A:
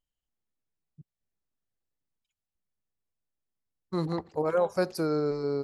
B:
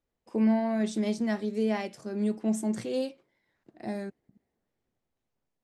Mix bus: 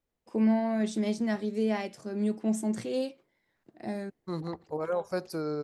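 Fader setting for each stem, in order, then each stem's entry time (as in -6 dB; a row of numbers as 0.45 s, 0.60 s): -5.0 dB, -0.5 dB; 0.35 s, 0.00 s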